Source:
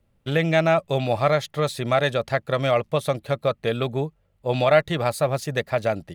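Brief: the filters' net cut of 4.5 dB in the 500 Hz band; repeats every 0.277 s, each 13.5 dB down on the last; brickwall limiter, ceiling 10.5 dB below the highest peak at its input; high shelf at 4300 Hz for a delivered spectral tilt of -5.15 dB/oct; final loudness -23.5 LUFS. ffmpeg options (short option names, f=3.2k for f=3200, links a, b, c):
-af "equalizer=f=500:t=o:g=-6,highshelf=f=4.3k:g=3.5,alimiter=limit=-16.5dB:level=0:latency=1,aecho=1:1:277|554:0.211|0.0444,volume=4.5dB"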